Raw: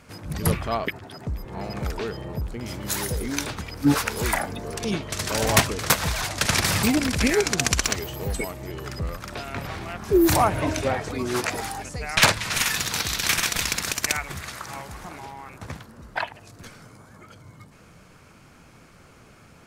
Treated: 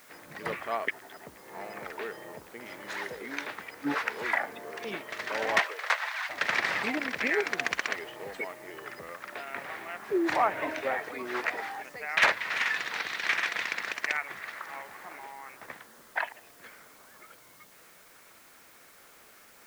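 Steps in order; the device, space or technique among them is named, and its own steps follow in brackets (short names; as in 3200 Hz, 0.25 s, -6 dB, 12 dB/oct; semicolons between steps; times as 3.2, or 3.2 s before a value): drive-through speaker (BPF 420–2800 Hz; bell 1900 Hz +7.5 dB 0.49 oct; hard clip -9.5 dBFS, distortion -23 dB; white noise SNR 24 dB); 5.58–6.28 HPF 380 Hz -> 960 Hz 24 dB/oct; gain -5 dB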